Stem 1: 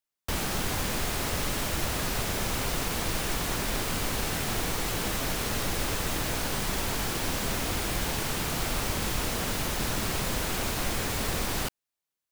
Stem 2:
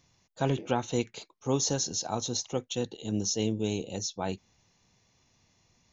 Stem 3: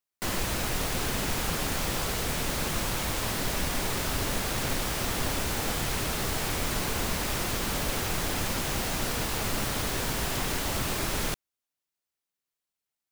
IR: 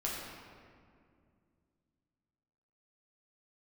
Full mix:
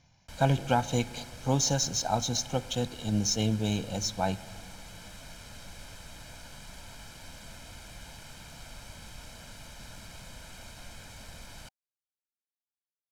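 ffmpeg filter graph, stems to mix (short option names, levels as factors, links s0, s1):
-filter_complex "[0:a]highshelf=f=5100:g=10.5,bandreject=f=770:w=12,volume=0.112[s0];[1:a]volume=1.12,asplit=2[s1][s2];[s2]volume=0.106[s3];[3:a]atrim=start_sample=2205[s4];[s3][s4]afir=irnorm=-1:irlink=0[s5];[s0][s1][s5]amix=inputs=3:normalize=0,aecho=1:1:1.3:0.64,adynamicsmooth=sensitivity=7.5:basefreq=6500"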